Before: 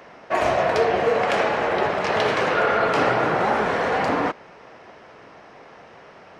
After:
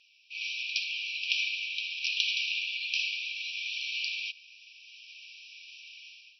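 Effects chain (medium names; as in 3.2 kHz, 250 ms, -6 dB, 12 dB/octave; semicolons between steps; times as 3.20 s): level rider gain up to 15 dB; brick-wall FIR band-pass 2.3–5.9 kHz; trim -4 dB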